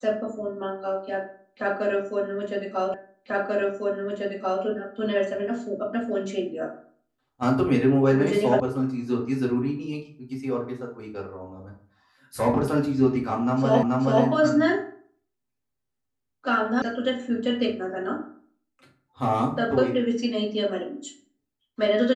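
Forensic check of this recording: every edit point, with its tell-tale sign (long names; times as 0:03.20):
0:02.94: the same again, the last 1.69 s
0:08.60: cut off before it has died away
0:13.83: the same again, the last 0.43 s
0:16.82: cut off before it has died away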